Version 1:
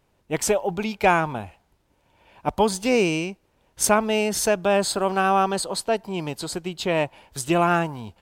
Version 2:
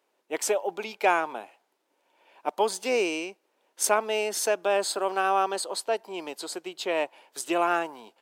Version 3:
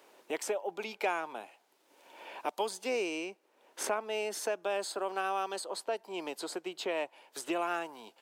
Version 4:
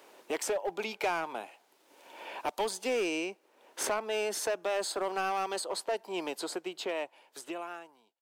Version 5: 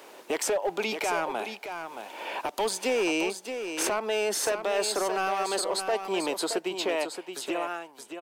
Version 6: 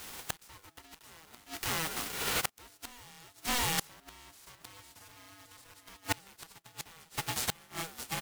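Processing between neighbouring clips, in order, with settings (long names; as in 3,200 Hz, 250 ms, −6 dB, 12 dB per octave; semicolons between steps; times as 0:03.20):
high-pass filter 320 Hz 24 dB per octave; level −4 dB
multiband upward and downward compressor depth 70%; level −8 dB
fade-out on the ending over 2.08 s; in parallel at −5 dB: wave folding −31.5 dBFS
brickwall limiter −29 dBFS, peak gain reduction 10 dB; single-tap delay 622 ms −8 dB; level +8 dB
spectral envelope flattened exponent 0.3; gate with flip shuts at −19 dBFS, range −30 dB; ring modulator with a square carrier 490 Hz; level +3 dB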